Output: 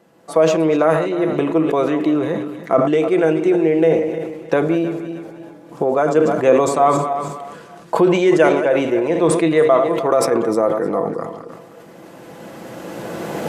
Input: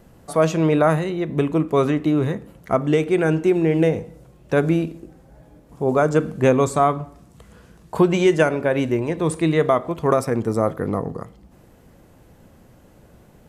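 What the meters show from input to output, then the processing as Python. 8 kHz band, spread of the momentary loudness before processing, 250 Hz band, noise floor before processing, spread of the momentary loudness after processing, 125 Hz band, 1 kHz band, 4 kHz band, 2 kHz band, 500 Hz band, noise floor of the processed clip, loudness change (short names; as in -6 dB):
+4.5 dB, 8 LU, +2.5 dB, -51 dBFS, 16 LU, -4.5 dB, +4.0 dB, +3.0 dB, +2.5 dB, +5.0 dB, -41 dBFS, +3.0 dB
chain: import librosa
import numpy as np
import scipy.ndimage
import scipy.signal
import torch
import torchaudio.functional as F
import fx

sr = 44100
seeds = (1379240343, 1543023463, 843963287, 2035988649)

y = fx.reverse_delay_fb(x, sr, ms=155, feedback_pct=50, wet_db=-11.5)
y = fx.recorder_agc(y, sr, target_db=-8.0, rise_db_per_s=11.0, max_gain_db=30)
y = scipy.signal.sosfilt(scipy.signal.butter(2, 270.0, 'highpass', fs=sr, output='sos'), y)
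y = fx.high_shelf(y, sr, hz=7900.0, db=-9.5)
y = y + 0.35 * np.pad(y, (int(6.0 * sr / 1000.0), 0))[:len(y)]
y = fx.dynamic_eq(y, sr, hz=550.0, q=1.2, threshold_db=-27.0, ratio=4.0, max_db=4)
y = fx.sustainer(y, sr, db_per_s=48.0)
y = F.gain(torch.from_numpy(y), -1.0).numpy()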